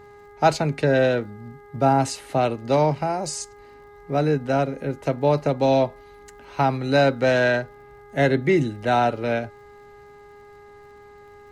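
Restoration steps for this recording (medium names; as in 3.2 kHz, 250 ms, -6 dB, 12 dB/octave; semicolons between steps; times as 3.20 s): de-click; de-hum 410.6 Hz, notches 5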